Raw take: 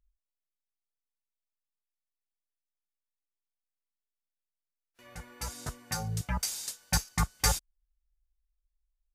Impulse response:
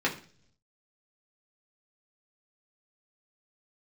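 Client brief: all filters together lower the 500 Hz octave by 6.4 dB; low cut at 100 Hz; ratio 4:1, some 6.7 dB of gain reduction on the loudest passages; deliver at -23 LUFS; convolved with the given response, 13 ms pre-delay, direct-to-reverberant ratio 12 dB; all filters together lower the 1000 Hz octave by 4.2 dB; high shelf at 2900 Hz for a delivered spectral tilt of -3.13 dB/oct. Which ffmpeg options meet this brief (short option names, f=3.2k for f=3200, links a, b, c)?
-filter_complex "[0:a]highpass=100,equalizer=f=500:t=o:g=-6.5,equalizer=f=1k:t=o:g=-3,highshelf=f=2.9k:g=-3,acompressor=threshold=-33dB:ratio=4,asplit=2[a][b];[1:a]atrim=start_sample=2205,adelay=13[c];[b][c]afir=irnorm=-1:irlink=0,volume=-23dB[d];[a][d]amix=inputs=2:normalize=0,volume=16dB"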